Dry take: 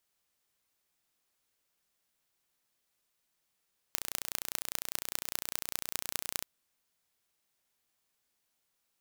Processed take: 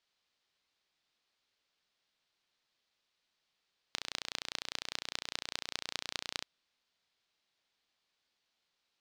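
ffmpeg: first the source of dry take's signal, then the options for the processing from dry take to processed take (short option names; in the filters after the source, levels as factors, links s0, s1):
-f lavfi -i "aevalsrc='0.708*eq(mod(n,1475),0)*(0.5+0.5*eq(mod(n,8850),0))':d=2.49:s=44100"
-af "lowpass=f=4200:t=q:w=1.7,lowshelf=f=220:g=-5"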